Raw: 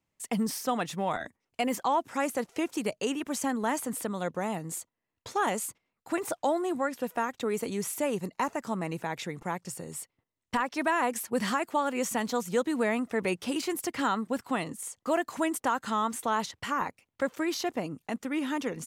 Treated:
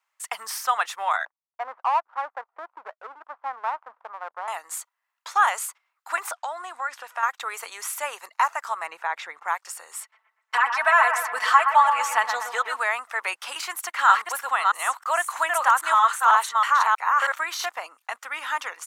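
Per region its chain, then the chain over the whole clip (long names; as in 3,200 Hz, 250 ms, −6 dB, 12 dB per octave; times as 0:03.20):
0:01.25–0:04.48: low-pass filter 1,100 Hz 24 dB per octave + power curve on the samples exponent 1.4
0:06.31–0:07.23: low-pass filter 8,700 Hz + downward compressor 10 to 1, threshold −29 dBFS
0:08.87–0:09.48: low-pass filter 2,500 Hz 6 dB per octave + low-shelf EQ 240 Hz +12 dB
0:10.00–0:12.77: high-shelf EQ 5,700 Hz −7 dB + comb filter 4.6 ms, depth 96% + bucket-brigade delay 120 ms, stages 2,048, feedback 52%, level −7 dB
0:13.76–0:17.66: delay that plays each chunk backwards 319 ms, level −1.5 dB + notch filter 5,000 Hz, Q 8.3
whole clip: high-pass filter 790 Hz 24 dB per octave; parametric band 1,300 Hz +9 dB 1.2 octaves; level +4 dB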